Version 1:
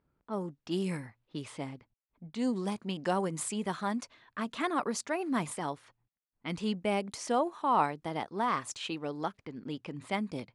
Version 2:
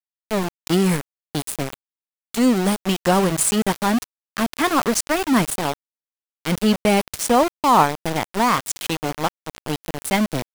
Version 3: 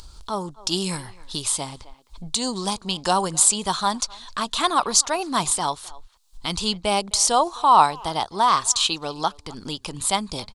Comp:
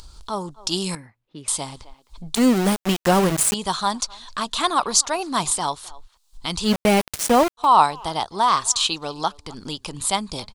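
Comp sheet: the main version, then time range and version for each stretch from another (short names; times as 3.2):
3
0.95–1.48 from 1
2.35–3.54 from 2
6.68–7.62 from 2, crossfade 0.10 s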